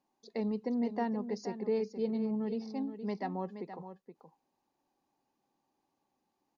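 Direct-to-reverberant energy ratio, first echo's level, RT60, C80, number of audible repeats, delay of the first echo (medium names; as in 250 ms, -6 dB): no reverb, -10.5 dB, no reverb, no reverb, 1, 473 ms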